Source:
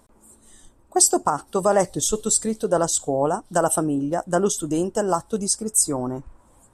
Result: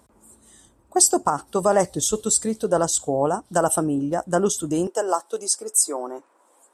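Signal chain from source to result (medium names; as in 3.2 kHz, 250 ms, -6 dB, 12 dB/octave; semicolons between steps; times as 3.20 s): high-pass 45 Hz 24 dB/octave, from 4.87 s 360 Hz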